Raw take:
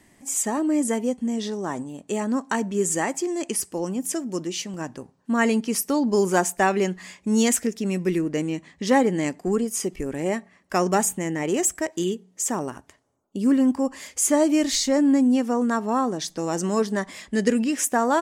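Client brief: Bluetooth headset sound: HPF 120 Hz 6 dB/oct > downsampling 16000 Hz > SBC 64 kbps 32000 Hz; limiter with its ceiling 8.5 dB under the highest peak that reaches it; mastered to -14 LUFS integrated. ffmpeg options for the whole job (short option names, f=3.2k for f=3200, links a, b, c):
-af "alimiter=limit=-14.5dB:level=0:latency=1,highpass=f=120:p=1,aresample=16000,aresample=44100,volume=12.5dB" -ar 32000 -c:a sbc -b:a 64k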